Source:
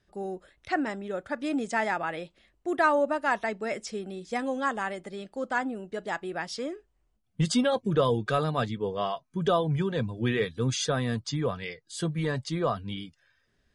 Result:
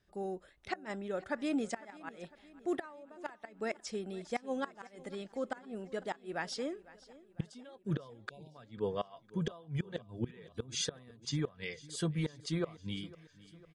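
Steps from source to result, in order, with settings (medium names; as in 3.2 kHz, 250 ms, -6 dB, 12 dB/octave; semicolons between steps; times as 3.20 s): inverted gate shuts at -19 dBFS, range -24 dB; feedback delay 503 ms, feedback 57%, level -20 dB; spectral selection erased 8.30–8.55 s, 1–2.2 kHz; trim -4 dB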